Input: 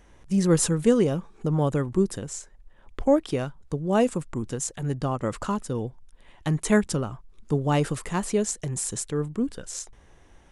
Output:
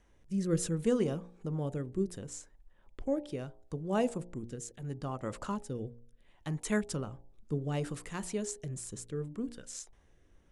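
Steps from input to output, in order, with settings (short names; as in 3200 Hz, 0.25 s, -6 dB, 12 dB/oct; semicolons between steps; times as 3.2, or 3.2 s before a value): rotary speaker horn 0.7 Hz; de-hum 58.98 Hz, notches 16; gain -8 dB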